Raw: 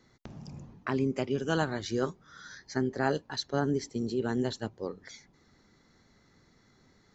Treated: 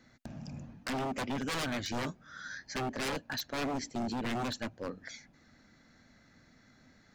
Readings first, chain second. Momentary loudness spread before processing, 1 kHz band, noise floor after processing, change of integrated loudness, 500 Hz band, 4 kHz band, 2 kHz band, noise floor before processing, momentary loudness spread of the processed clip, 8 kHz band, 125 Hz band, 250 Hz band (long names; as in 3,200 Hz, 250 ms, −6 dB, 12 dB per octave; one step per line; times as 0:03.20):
18 LU, −1.0 dB, −63 dBFS, −4.5 dB, −7.5 dB, +0.5 dB, −0.5 dB, −65 dBFS, 12 LU, can't be measured, −6.5 dB, −5.0 dB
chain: thirty-one-band graphic EQ 250 Hz +6 dB, 400 Hz −9 dB, 630 Hz +6 dB, 1,000 Hz −4 dB, 1,600 Hz +7 dB, 2,500 Hz +6 dB
wave folding −29 dBFS